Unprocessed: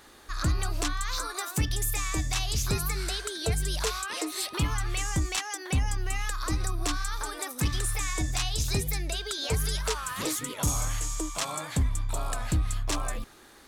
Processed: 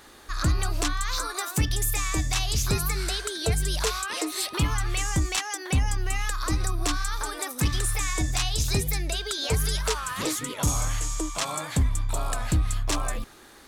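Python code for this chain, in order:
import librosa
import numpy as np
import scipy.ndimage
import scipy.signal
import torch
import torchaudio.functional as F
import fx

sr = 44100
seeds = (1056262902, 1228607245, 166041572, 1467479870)

y = fx.high_shelf(x, sr, hz=12000.0, db=-7.0, at=(9.99, 11.46))
y = F.gain(torch.from_numpy(y), 3.0).numpy()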